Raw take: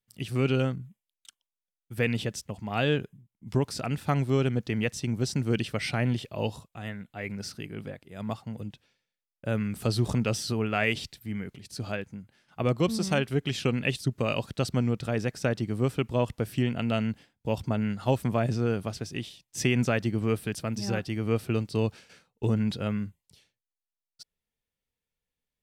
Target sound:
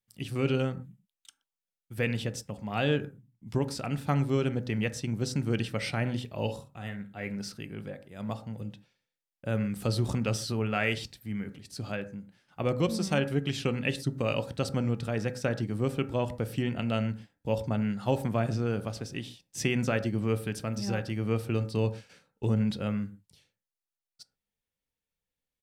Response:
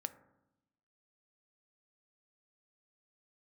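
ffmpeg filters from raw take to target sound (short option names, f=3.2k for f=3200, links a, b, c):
-filter_complex "[0:a]asplit=3[a][b][c];[a]afade=t=out:st=6.47:d=0.02[d];[b]asplit=2[e][f];[f]adelay=49,volume=-11dB[g];[e][g]amix=inputs=2:normalize=0,afade=t=in:st=6.47:d=0.02,afade=t=out:st=7.29:d=0.02[h];[c]afade=t=in:st=7.29:d=0.02[i];[d][h][i]amix=inputs=3:normalize=0[j];[1:a]atrim=start_sample=2205,atrim=end_sample=6174[k];[j][k]afir=irnorm=-1:irlink=0"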